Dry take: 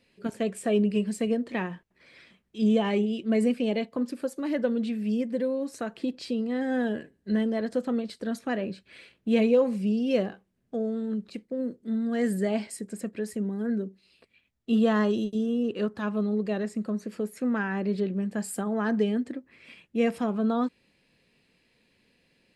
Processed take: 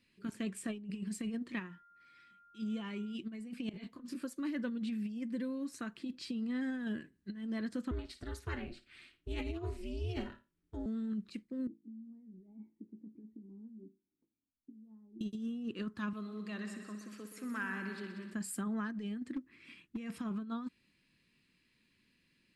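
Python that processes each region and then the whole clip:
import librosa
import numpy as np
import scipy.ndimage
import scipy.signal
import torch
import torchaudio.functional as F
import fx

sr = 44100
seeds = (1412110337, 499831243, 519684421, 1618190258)

y = fx.comb_fb(x, sr, f0_hz=490.0, decay_s=0.5, harmonics='all', damping=0.0, mix_pct=60, at=(1.58, 3.14), fade=0.02)
y = fx.dmg_tone(y, sr, hz=1400.0, level_db=-55.0, at=(1.58, 3.14), fade=0.02)
y = fx.chain(y, sr, fx.over_compress(threshold_db=-32.0, ratio=-0.5),
    fx.detune_double(cents=56), at=(3.69, 4.24))
y = fx.chain(y, sr, fx.comb(ms=7.3, depth=0.64),
    fx.room_flutter(wall_m=9.5, rt60_s=0.25),
    fx.ring_mod(carrier_hz=170.0), at=(7.91, 10.86))
y = fx.chain(y, sr, fx.over_compress(threshold_db=-32.0, ratio=-1.0),
    fx.formant_cascade(vowel='u'),
    fx.comb_fb(f0_hz=55.0, decay_s=0.26, harmonics='all', damping=0.0, mix_pct=80), at=(11.67, 15.21))
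y = fx.chain(y, sr, fx.highpass(hz=630.0, slope=6),
    fx.echo_heads(ms=62, heads='all three', feedback_pct=56, wet_db=-12), at=(16.13, 18.34))
y = fx.chain(y, sr, fx.peak_eq(hz=310.0, db=7.0, octaves=0.65),
    fx.clip_hard(threshold_db=-26.0), at=(19.34, 19.97))
y = fx.band_shelf(y, sr, hz=600.0, db=-12.0, octaves=1.2)
y = fx.over_compress(y, sr, threshold_db=-29.0, ratio=-0.5)
y = y * librosa.db_to_amplitude(-7.5)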